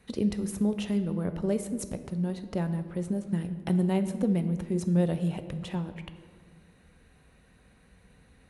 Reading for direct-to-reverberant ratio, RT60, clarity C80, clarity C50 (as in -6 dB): 9.0 dB, 1.8 s, 12.5 dB, 11.0 dB